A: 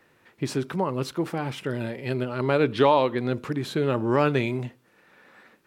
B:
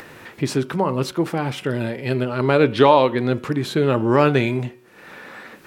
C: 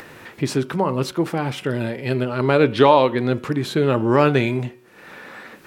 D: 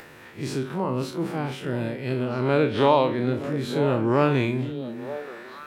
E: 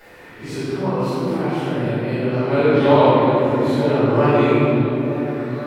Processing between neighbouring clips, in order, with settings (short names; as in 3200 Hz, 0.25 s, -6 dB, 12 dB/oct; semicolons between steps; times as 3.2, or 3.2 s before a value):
de-hum 185.2 Hz, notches 18; upward compressor, threshold -35 dBFS; gain +6 dB
nothing audible
time blur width 80 ms; delay with a stepping band-pass 0.463 s, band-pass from 220 Hz, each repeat 1.4 oct, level -6.5 dB; gain -3.5 dB
reverb RT60 3.1 s, pre-delay 3 ms, DRR -19 dB; gain -16 dB